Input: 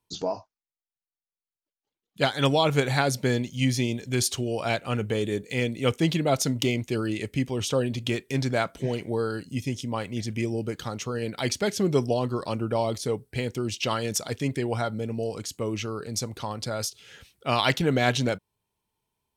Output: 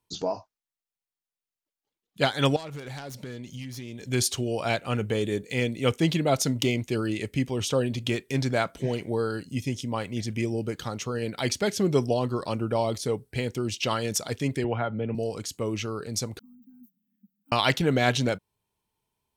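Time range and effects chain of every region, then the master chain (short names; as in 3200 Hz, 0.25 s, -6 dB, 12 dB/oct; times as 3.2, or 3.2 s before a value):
2.56–4.01 self-modulated delay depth 0.14 ms + compressor 12:1, threshold -34 dBFS
14.64–15.15 Chebyshev low-pass 3000 Hz, order 4 + three-band squash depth 70%
16.39–17.52 block floating point 7-bit + inverse Chebyshev band-stop 200–9900 Hz, stop band 50 dB + frequency shift +140 Hz
whole clip: dry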